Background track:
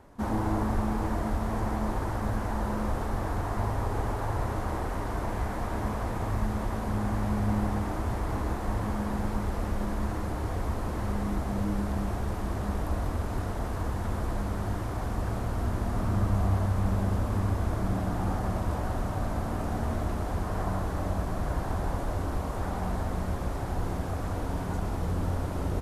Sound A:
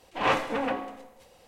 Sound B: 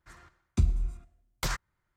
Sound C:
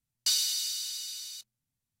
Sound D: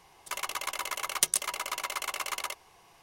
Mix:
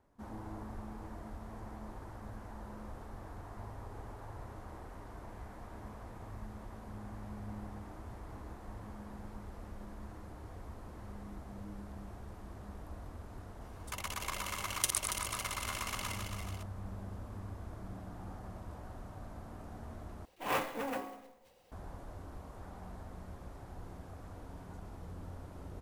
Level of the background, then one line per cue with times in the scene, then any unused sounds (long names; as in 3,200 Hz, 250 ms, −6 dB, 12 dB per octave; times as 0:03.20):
background track −17 dB
0:13.61: mix in D −7 dB + feedback delay that plays each chunk backwards 140 ms, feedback 70%, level −5 dB
0:20.25: overwrite with A −9 dB + converter with an unsteady clock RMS 0.026 ms
not used: B, C